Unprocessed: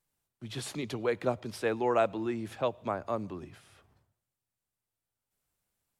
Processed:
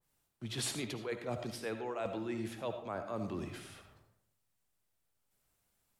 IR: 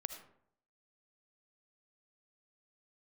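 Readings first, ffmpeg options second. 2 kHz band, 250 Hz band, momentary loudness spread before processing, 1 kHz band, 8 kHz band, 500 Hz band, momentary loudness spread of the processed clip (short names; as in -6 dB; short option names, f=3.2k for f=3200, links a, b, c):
-5.5 dB, -4.5 dB, 14 LU, -9.5 dB, +3.5 dB, -8.5 dB, 10 LU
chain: -filter_complex "[0:a]areverse,acompressor=threshold=-39dB:ratio=16,areverse[a];[1:a]atrim=start_sample=2205[b];[a][b]afir=irnorm=-1:irlink=0,adynamicequalizer=threshold=0.001:dfrequency=1800:dqfactor=0.7:tfrequency=1800:tqfactor=0.7:attack=5:release=100:ratio=0.375:range=2:mode=boostabove:tftype=highshelf,volume=6dB"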